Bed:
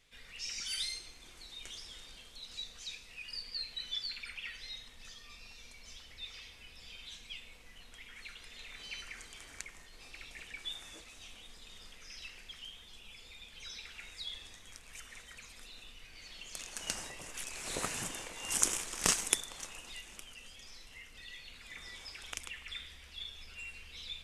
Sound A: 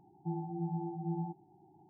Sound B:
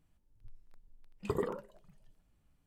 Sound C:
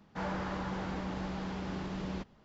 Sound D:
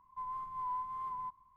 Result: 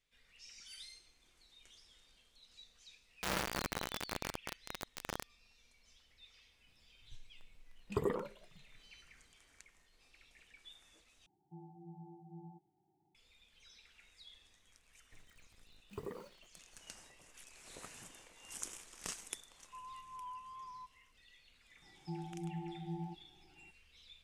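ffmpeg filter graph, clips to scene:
-filter_complex "[2:a]asplit=2[a][b];[1:a]asplit=2[c][d];[0:a]volume=-15dB[e];[3:a]acrusher=bits=4:mix=0:aa=0.000001[f];[b]acrusher=bits=8:mix=0:aa=0.000001[g];[e]asplit=2[h][i];[h]atrim=end=11.264[j];[c]atrim=end=1.89,asetpts=PTS-STARTPTS,volume=-16dB[k];[i]atrim=start=13.146[l];[f]atrim=end=2.44,asetpts=PTS-STARTPTS,volume=-0.5dB,afade=t=in:d=0.004:c=hsin,afade=t=out:st=2.436:d=0.004:c=hsin,adelay=134505S[m];[a]atrim=end=2.66,asetpts=PTS-STARTPTS,volume=-1dB,afade=t=in:d=0.004:c=hsin,afade=t=out:st=2.656:d=0.004:c=hsin,adelay=6670[n];[g]atrim=end=2.66,asetpts=PTS-STARTPTS,volume=-11.5dB,afade=t=in:d=0.004:c=hsin,afade=t=out:st=2.656:d=0.004:c=hsin,adelay=14680[o];[4:a]atrim=end=1.56,asetpts=PTS-STARTPTS,volume=-10dB,afade=t=in:d=0.004:c=hsin,afade=t=out:st=1.556:d=0.004:c=hsin,adelay=862596S[p];[d]atrim=end=1.89,asetpts=PTS-STARTPTS,volume=-6dB,afade=t=in:d=0.004:c=hsin,afade=t=out:st=1.886:d=0.004:c=hsin,adelay=21820[q];[j][k]acrossfade=d=0.004:c1=hsin:c2=hsin[r];[r][l]acrossfade=d=0.004:c1=hsin:c2=hsin[s];[s][m][n][o][p][q]amix=inputs=6:normalize=0"

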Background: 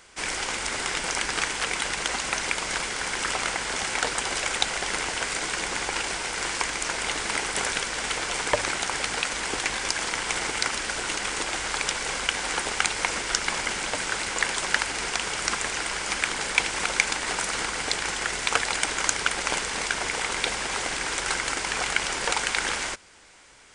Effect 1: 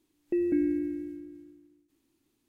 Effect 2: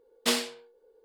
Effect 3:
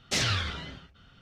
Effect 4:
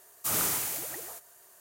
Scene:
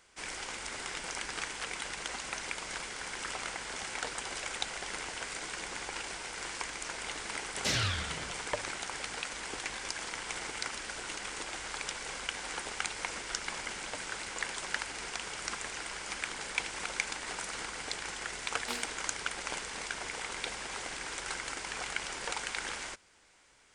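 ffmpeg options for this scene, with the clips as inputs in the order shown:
-filter_complex "[0:a]volume=-11dB[a];[3:a]atrim=end=1.21,asetpts=PTS-STARTPTS,volume=-4dB,afade=t=in:d=0.004:c=hsin,afade=t=out:st=1.206:d=0.004:c=hsin,adelay=7530[b];[2:a]atrim=end=1.04,asetpts=PTS-STARTPTS,volume=-15dB,afade=t=in:d=0.004:c=hsin,afade=t=out:st=1.036:d=0.004:c=hsin,adelay=18420[c];[a][b][c]amix=inputs=3:normalize=0"

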